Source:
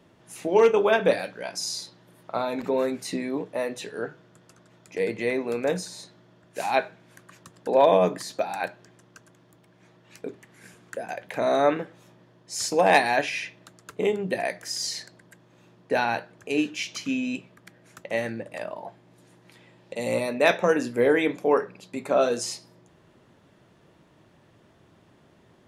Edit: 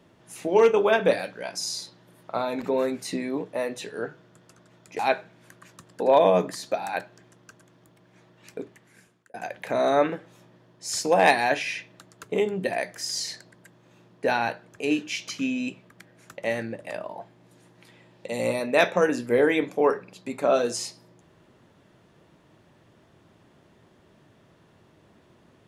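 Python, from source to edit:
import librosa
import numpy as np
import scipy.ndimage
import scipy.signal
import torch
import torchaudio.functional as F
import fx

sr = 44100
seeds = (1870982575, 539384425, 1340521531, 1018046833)

y = fx.edit(x, sr, fx.cut(start_s=4.99, length_s=1.67),
    fx.fade_out_span(start_s=10.26, length_s=0.75), tone=tone)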